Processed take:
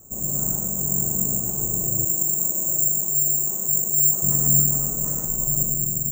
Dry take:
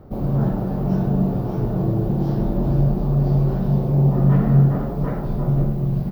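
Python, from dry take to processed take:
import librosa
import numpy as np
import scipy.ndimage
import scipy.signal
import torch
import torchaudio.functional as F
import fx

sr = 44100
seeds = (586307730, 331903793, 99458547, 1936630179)

y = x + 10.0 ** (-3.5 / 20.0) * np.pad(x, (int(120 * sr / 1000.0), 0))[:len(x)]
y = (np.kron(y[::6], np.eye(6)[0]) * 6)[:len(y)]
y = fx.highpass(y, sr, hz=450.0, slope=6, at=(2.05, 4.23))
y = y * librosa.db_to_amplitude(-12.0)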